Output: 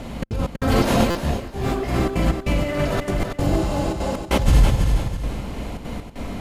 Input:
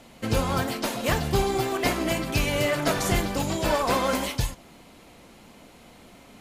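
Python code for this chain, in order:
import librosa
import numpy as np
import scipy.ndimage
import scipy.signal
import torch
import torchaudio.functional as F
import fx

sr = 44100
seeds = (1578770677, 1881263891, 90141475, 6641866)

y = fx.peak_eq(x, sr, hz=62.0, db=5.5, octaves=1.1)
y = fx.rev_schroeder(y, sr, rt60_s=1.2, comb_ms=38, drr_db=4.0)
y = fx.over_compress(y, sr, threshold_db=-31.0, ratio=-1.0)
y = fx.spec_repair(y, sr, seeds[0], start_s=3.43, length_s=0.69, low_hz=690.0, high_hz=11000.0, source='before')
y = fx.step_gate(y, sr, bpm=195, pattern='xxx.xx..xxxx', floor_db=-60.0, edge_ms=4.5)
y = fx.tilt_eq(y, sr, slope=-2.0)
y = fx.echo_feedback(y, sr, ms=326, feedback_pct=34, wet_db=-6.0)
y = fx.buffer_glitch(y, sr, at_s=(1.1,), block=256, repeats=8)
y = fx.detune_double(y, sr, cents=fx.line((1.19, 37.0), (1.87, 50.0)), at=(1.19, 1.87), fade=0.02)
y = y * 10.0 ** (6.5 / 20.0)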